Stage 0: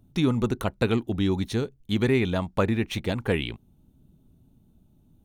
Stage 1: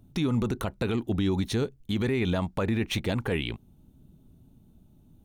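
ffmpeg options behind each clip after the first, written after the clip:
-af "alimiter=limit=0.1:level=0:latency=1:release=40,volume=1.33"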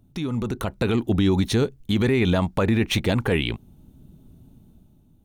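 -af "dynaudnorm=f=140:g=9:m=2.51,volume=0.841"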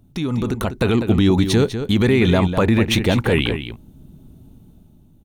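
-filter_complex "[0:a]asplit=2[s0][s1];[s1]adelay=198.3,volume=0.355,highshelf=f=4000:g=-4.46[s2];[s0][s2]amix=inputs=2:normalize=0,volume=1.68"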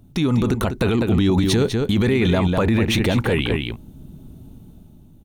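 -af "alimiter=limit=0.211:level=0:latency=1:release=25,volume=1.5"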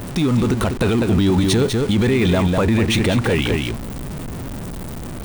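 -af "aeval=exprs='val(0)+0.5*0.0596*sgn(val(0))':c=same,aexciter=amount=1.2:drive=1.1:freq=8100"

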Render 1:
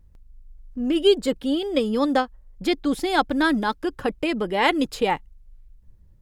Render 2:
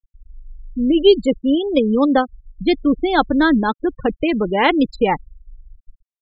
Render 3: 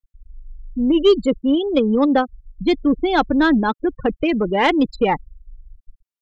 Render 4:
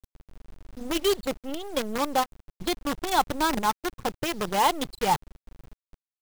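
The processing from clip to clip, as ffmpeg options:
-af "afftfilt=real='re*gte(hypot(re,im),0.0631)':imag='im*gte(hypot(re,im),0.0631)':win_size=1024:overlap=0.75,lowshelf=f=330:g=6,volume=1.5"
-af "asoftclip=type=tanh:threshold=0.562"
-af "equalizer=f=125:t=o:w=1:g=12,equalizer=f=250:t=o:w=1:g=-10,equalizer=f=500:t=o:w=1:g=-4,equalizer=f=1000:t=o:w=1:g=9,equalizer=f=2000:t=o:w=1:g=-11,equalizer=f=4000:t=o:w=1:g=7,acompressor=mode=upward:threshold=0.0126:ratio=2.5,acrusher=bits=4:dc=4:mix=0:aa=0.000001,volume=0.447"

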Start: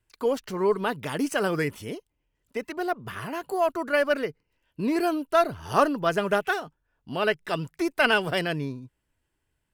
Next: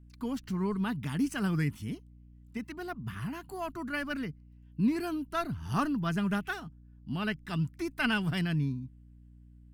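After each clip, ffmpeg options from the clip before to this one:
-af "lowshelf=f=300:t=q:w=1.5:g=9.5,aeval=exprs='val(0)+0.00562*(sin(2*PI*60*n/s)+sin(2*PI*2*60*n/s)/2+sin(2*PI*3*60*n/s)/3+sin(2*PI*4*60*n/s)/4+sin(2*PI*5*60*n/s)/5)':c=same,equalizer=f=540:t=o:w=0.68:g=-11.5,volume=0.422"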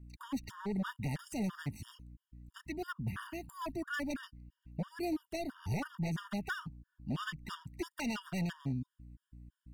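-af "acompressor=threshold=0.0282:ratio=12,aeval=exprs='0.0282*(abs(mod(val(0)/0.0282+3,4)-2)-1)':c=same,afftfilt=real='re*gt(sin(2*PI*3*pts/sr)*(1-2*mod(floor(b*sr/1024/940),2)),0)':imag='im*gt(sin(2*PI*3*pts/sr)*(1-2*mod(floor(b*sr/1024/940),2)),0)':win_size=1024:overlap=0.75,volume=1.33"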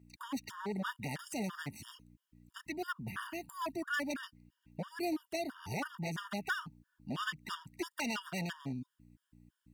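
-af "highpass=f=400:p=1,volume=1.5"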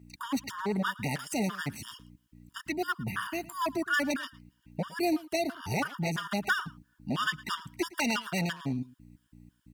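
-filter_complex "[0:a]asplit=2[s0][s1];[s1]adelay=110.8,volume=0.1,highshelf=f=4000:g=-2.49[s2];[s0][s2]amix=inputs=2:normalize=0,volume=2.37"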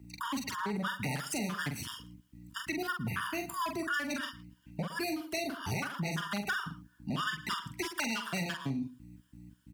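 -filter_complex "[0:a]acrossover=split=200|1200|5200[s0][s1][s2][s3];[s1]alimiter=level_in=2.24:limit=0.0631:level=0:latency=1,volume=0.447[s4];[s0][s4][s2][s3]amix=inputs=4:normalize=0,asplit=2[s5][s6];[s6]adelay=44,volume=0.562[s7];[s5][s7]amix=inputs=2:normalize=0,acompressor=threshold=0.0224:ratio=4,volume=1.19"

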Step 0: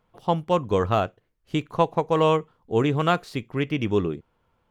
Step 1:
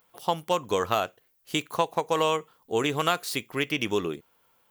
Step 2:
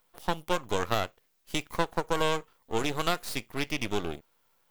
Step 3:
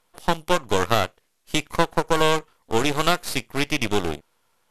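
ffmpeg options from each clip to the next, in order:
-af "aemphasis=mode=production:type=riaa,acompressor=threshold=0.0631:ratio=2.5,volume=1.26"
-af "aeval=exprs='max(val(0),0)':c=same"
-filter_complex "[0:a]asplit=2[s0][s1];[s1]acrusher=bits=4:mix=0:aa=0.000001,volume=0.473[s2];[s0][s2]amix=inputs=2:normalize=0,volume=1.68" -ar 44100 -c:a mp2 -b:a 192k

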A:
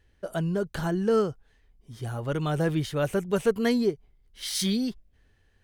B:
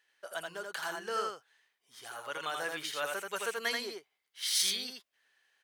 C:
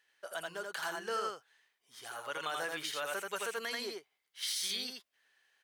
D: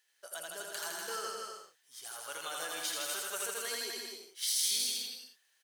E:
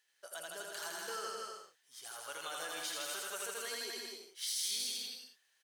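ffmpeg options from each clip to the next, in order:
-af "highpass=1100,aecho=1:1:83:0.668"
-af "alimiter=level_in=1.26:limit=0.0631:level=0:latency=1:release=60,volume=0.794"
-filter_complex "[0:a]bass=f=250:g=-5,treble=f=4000:g=13,asplit=2[s0][s1];[s1]aecho=0:1:160|256|313.6|348.2|368.9:0.631|0.398|0.251|0.158|0.1[s2];[s0][s2]amix=inputs=2:normalize=0,volume=0.531"
-filter_complex "[0:a]highshelf=f=9000:g=-5,asplit=2[s0][s1];[s1]alimiter=level_in=2.37:limit=0.0631:level=0:latency=1,volume=0.422,volume=0.841[s2];[s0][s2]amix=inputs=2:normalize=0,volume=0.473"

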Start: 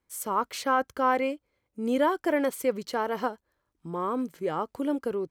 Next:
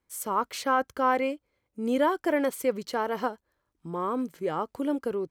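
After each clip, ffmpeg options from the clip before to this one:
-af anull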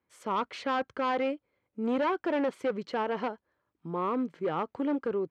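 -af "volume=16.8,asoftclip=hard,volume=0.0596,highpass=100,lowpass=3000"

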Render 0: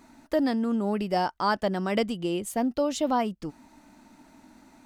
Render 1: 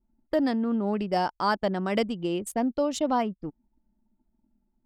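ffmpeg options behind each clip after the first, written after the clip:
-af "anlmdn=2.51"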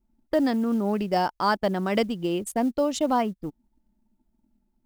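-af "acrusher=bits=8:mode=log:mix=0:aa=0.000001,volume=1.26"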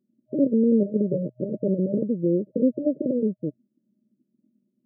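-af "aeval=exprs='0.335*(cos(1*acos(clip(val(0)/0.335,-1,1)))-cos(1*PI/2))+0.133*(cos(4*acos(clip(val(0)/0.335,-1,1)))-cos(4*PI/2))':c=same,aeval=exprs='(mod(3.55*val(0)+1,2)-1)/3.55':c=same,afftfilt=real='re*between(b*sr/4096,120,620)':imag='im*between(b*sr/4096,120,620)':win_size=4096:overlap=0.75,volume=1.5"

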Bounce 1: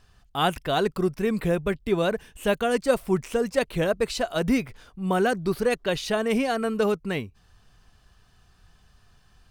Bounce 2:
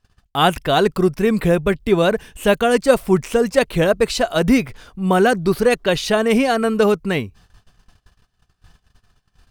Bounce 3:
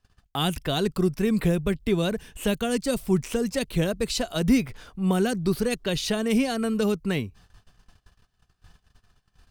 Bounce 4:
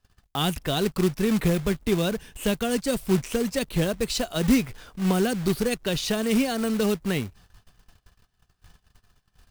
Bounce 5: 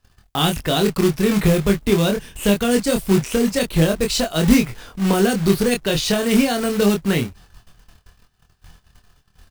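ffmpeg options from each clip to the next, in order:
-af "agate=range=0.0891:threshold=0.002:ratio=16:detection=peak,volume=2.51"
-filter_complex "[0:a]acrossover=split=310|3000[s0][s1][s2];[s1]acompressor=threshold=0.0501:ratio=6[s3];[s0][s3][s2]amix=inputs=3:normalize=0,volume=0.668"
-af "acrusher=bits=3:mode=log:mix=0:aa=0.000001"
-filter_complex "[0:a]asplit=2[s0][s1];[s1]adelay=25,volume=0.631[s2];[s0][s2]amix=inputs=2:normalize=0,volume=1.88"

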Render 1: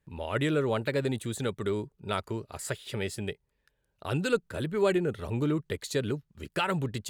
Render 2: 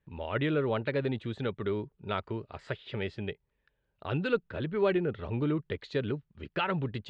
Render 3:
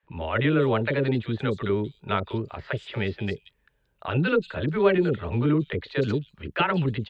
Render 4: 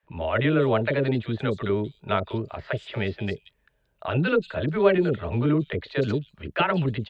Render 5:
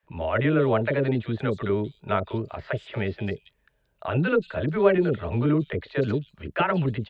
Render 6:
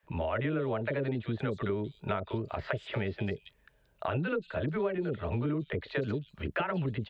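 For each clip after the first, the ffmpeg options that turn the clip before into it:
-af "lowpass=f=3600:w=0.5412,lowpass=f=3600:w=1.3066,volume=0.841"
-filter_complex "[0:a]acrossover=split=550|4300[s0][s1][s2];[s0]adelay=30[s3];[s2]adelay=180[s4];[s3][s1][s4]amix=inputs=3:normalize=0,volume=2.51"
-af "equalizer=f=640:w=6.1:g=7.5"
-filter_complex "[0:a]acrossover=split=2900[s0][s1];[s1]acompressor=threshold=0.00282:ratio=4:attack=1:release=60[s2];[s0][s2]amix=inputs=2:normalize=0"
-af "acompressor=threshold=0.0251:ratio=6,volume=1.33"

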